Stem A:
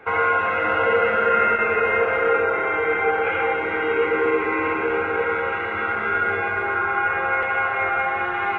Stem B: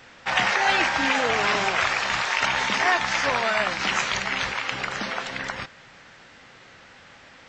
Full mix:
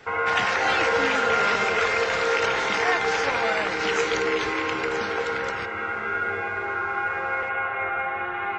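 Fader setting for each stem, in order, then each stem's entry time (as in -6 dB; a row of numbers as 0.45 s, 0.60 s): -5.0 dB, -3.5 dB; 0.00 s, 0.00 s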